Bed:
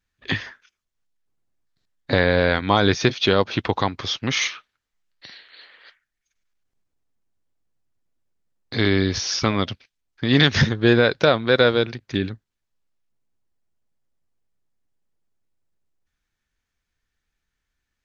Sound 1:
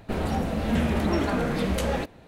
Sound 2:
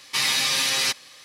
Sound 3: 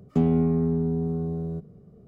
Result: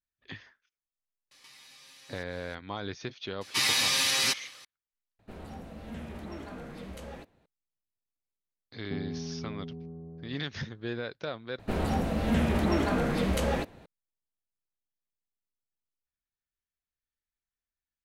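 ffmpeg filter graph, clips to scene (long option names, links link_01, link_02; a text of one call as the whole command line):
ffmpeg -i bed.wav -i cue0.wav -i cue1.wav -i cue2.wav -filter_complex "[2:a]asplit=2[link_01][link_02];[1:a]asplit=2[link_03][link_04];[0:a]volume=-19.5dB[link_05];[link_01]acompressor=threshold=-41dB:ratio=6:attack=3.2:release=140:knee=1:detection=peak[link_06];[3:a]lowpass=1200[link_07];[link_05]asplit=3[link_08][link_09][link_10];[link_08]atrim=end=5.194[link_11];[link_03]atrim=end=2.27,asetpts=PTS-STARTPTS,volume=-17dB[link_12];[link_09]atrim=start=7.456:end=11.594[link_13];[link_04]atrim=end=2.27,asetpts=PTS-STARTPTS,volume=-2dB[link_14];[link_10]atrim=start=13.856[link_15];[link_06]atrim=end=1.24,asetpts=PTS-STARTPTS,volume=-12dB,afade=type=in:duration=0.004:curve=hsin,afade=type=out:start_time=1.236:duration=0.004:curve=hsin,adelay=1310[link_16];[link_02]atrim=end=1.24,asetpts=PTS-STARTPTS,volume=-3.5dB,afade=type=in:duration=0.004:curve=hsin,afade=type=out:start_time=1.236:duration=0.004:curve=hsin,adelay=150381S[link_17];[link_07]atrim=end=2.07,asetpts=PTS-STARTPTS,volume=-15.5dB,afade=type=in:duration=0.004:curve=hsin,afade=type=out:start_time=2.066:duration=0.004:curve=hsin,adelay=8750[link_18];[link_11][link_12]acrossfade=duration=0.004:curve1=hsin:curve2=hsin[link_19];[link_19][link_13]acrossfade=duration=0.004:curve1=hsin:curve2=hsin[link_20];[link_20][link_14]acrossfade=duration=0.004:curve1=hsin:curve2=hsin[link_21];[link_21][link_15]acrossfade=duration=0.004:curve1=hsin:curve2=hsin[link_22];[link_22][link_16][link_17][link_18]amix=inputs=4:normalize=0" out.wav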